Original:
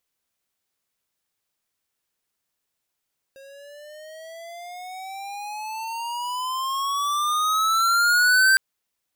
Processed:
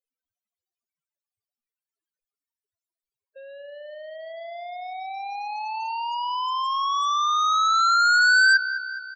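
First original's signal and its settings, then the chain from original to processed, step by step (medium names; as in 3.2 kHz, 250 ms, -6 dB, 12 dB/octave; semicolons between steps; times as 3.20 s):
gliding synth tone square, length 5.21 s, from 539 Hz, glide +18.5 st, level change +29.5 dB, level -15.5 dB
feedback delay 209 ms, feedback 56%, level -12 dB; loudest bins only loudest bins 8; bass shelf 480 Hz +8.5 dB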